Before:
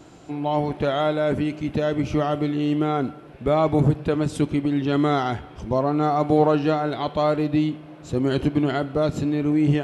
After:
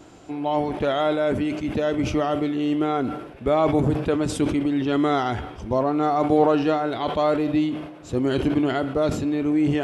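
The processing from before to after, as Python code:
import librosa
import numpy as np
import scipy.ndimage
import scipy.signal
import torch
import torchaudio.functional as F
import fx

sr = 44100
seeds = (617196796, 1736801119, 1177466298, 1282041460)

y = fx.peak_eq(x, sr, hz=150.0, db=-7.5, octaves=0.37)
y = fx.notch(y, sr, hz=4100.0, q=22.0)
y = fx.sustainer(y, sr, db_per_s=69.0)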